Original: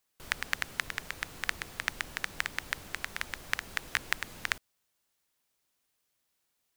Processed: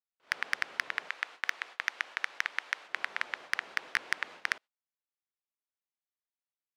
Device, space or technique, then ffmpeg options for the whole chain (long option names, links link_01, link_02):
walkie-talkie: -filter_complex "[0:a]asettb=1/sr,asplit=3[link_01][link_02][link_03];[link_01]atrim=end=1.094[link_04];[link_02]atrim=start=1.09:end=2.89,asetpts=PTS-STARTPTS,afade=type=in:duration=0.004:curve=qsin,afade=type=out:start_time=1.796:duration=0.004:curve=qsin,highpass=frequency=850:poles=1[link_05];[link_03]atrim=start=2.886[link_06];[link_04][link_05]acrossfade=duration=0.004:curve1=hsin:curve2=qsin[link_07];[link_07][link_06]acrossfade=duration=0.004:curve1=qsin:curve2=hsin,highpass=520,lowpass=2900,asoftclip=type=hard:threshold=-16.5dB,agate=range=-23dB:threshold=-52dB:ratio=16:detection=peak,volume=4dB"